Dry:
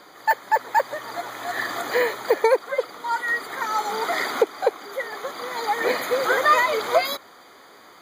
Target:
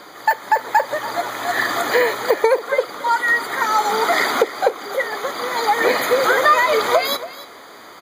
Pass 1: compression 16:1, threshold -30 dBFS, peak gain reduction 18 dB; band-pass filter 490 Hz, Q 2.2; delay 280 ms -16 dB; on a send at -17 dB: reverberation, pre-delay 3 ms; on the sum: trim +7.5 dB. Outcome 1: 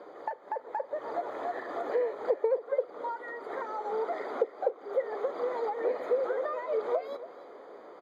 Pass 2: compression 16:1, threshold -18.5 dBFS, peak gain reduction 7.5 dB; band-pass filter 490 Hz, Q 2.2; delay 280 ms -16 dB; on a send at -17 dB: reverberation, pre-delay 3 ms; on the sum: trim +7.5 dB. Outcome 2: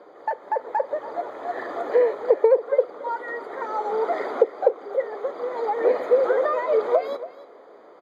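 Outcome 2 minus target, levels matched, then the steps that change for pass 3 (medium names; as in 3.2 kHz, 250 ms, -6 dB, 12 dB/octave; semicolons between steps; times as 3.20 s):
500 Hz band +4.5 dB
remove: band-pass filter 490 Hz, Q 2.2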